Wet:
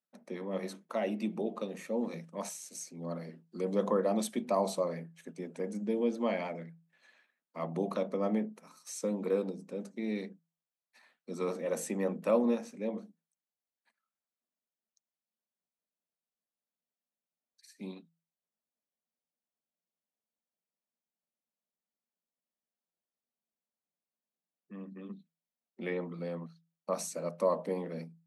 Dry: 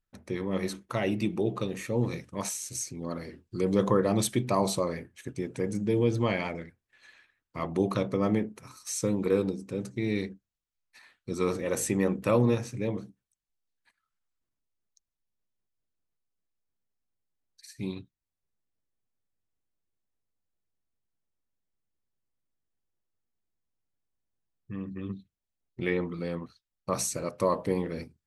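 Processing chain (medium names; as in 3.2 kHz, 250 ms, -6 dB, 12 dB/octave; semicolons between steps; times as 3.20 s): rippled Chebyshev high-pass 160 Hz, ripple 9 dB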